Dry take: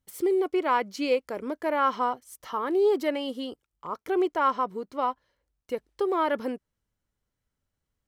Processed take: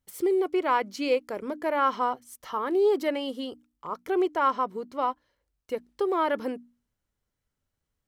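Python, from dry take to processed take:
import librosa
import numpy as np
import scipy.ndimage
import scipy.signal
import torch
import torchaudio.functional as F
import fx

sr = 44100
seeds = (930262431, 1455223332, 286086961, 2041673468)

y = fx.hum_notches(x, sr, base_hz=60, count=5)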